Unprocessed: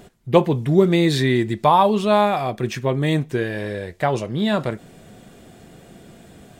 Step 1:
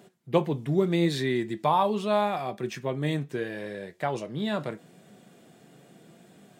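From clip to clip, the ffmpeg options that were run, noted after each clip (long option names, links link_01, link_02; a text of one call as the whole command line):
ffmpeg -i in.wav -af "highpass=frequency=130:width=0.5412,highpass=frequency=130:width=1.3066,flanger=delay=5:depth=2.2:regen=82:speed=0.78:shape=triangular,volume=-4dB" out.wav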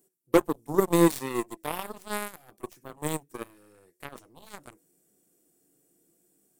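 ffmpeg -i in.wav -af "superequalizer=6b=3.55:7b=2.24:14b=2.82,aexciter=amount=11.9:drive=7.3:freq=7000,aeval=exprs='0.708*(cos(1*acos(clip(val(0)/0.708,-1,1)))-cos(1*PI/2))+0.0178*(cos(6*acos(clip(val(0)/0.708,-1,1)))-cos(6*PI/2))+0.112*(cos(7*acos(clip(val(0)/0.708,-1,1)))-cos(7*PI/2))':channel_layout=same,volume=-4dB" out.wav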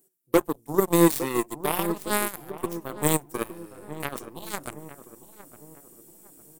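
ffmpeg -i in.wav -filter_complex "[0:a]highshelf=frequency=11000:gain=8.5,asplit=2[link_01][link_02];[link_02]adelay=859,lowpass=frequency=1200:poles=1,volume=-14.5dB,asplit=2[link_03][link_04];[link_04]adelay=859,lowpass=frequency=1200:poles=1,volume=0.41,asplit=2[link_05][link_06];[link_06]adelay=859,lowpass=frequency=1200:poles=1,volume=0.41,asplit=2[link_07][link_08];[link_08]adelay=859,lowpass=frequency=1200:poles=1,volume=0.41[link_09];[link_01][link_03][link_05][link_07][link_09]amix=inputs=5:normalize=0,dynaudnorm=framelen=230:gausssize=11:maxgain=12.5dB" out.wav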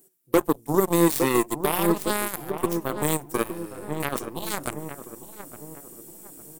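ffmpeg -i in.wav -af "alimiter=level_in=14dB:limit=-1dB:release=50:level=0:latency=1,volume=-7dB" out.wav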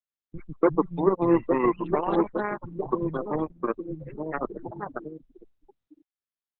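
ffmpeg -i in.wav -filter_complex "[0:a]afftfilt=real='re*gte(hypot(re,im),0.0794)':imag='im*gte(hypot(re,im),0.0794)':win_size=1024:overlap=0.75,acrossover=split=170|3100[link_01][link_02][link_03];[link_03]adelay=40[link_04];[link_02]adelay=290[link_05];[link_01][link_05][link_04]amix=inputs=3:normalize=0" -ar 48000 -c:a libopus -b:a 8k out.opus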